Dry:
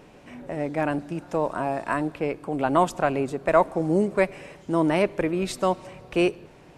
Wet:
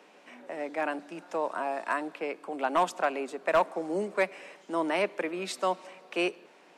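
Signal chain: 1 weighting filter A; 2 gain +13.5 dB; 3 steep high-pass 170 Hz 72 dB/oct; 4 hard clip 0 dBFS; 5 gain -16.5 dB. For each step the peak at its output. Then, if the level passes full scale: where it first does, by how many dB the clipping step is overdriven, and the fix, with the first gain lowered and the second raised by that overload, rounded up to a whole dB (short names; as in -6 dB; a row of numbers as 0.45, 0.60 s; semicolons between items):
-6.5, +7.0, +6.5, 0.0, -16.5 dBFS; step 2, 6.5 dB; step 2 +6.5 dB, step 5 -9.5 dB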